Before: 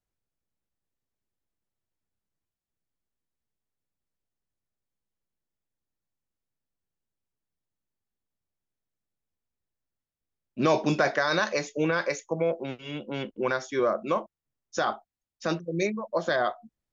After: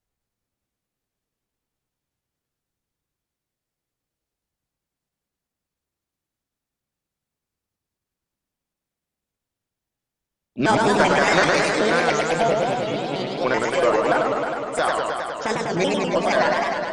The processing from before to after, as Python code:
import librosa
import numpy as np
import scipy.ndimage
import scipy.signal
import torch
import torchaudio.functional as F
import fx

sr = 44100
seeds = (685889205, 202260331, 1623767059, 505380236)

y = fx.pitch_trill(x, sr, semitones=5.5, every_ms=96)
y = fx.cheby_harmonics(y, sr, harmonics=(2,), levels_db=(-15,), full_scale_db=-11.0)
y = fx.echo_warbled(y, sr, ms=104, feedback_pct=80, rate_hz=2.8, cents=216, wet_db=-3.0)
y = y * librosa.db_to_amplitude(4.5)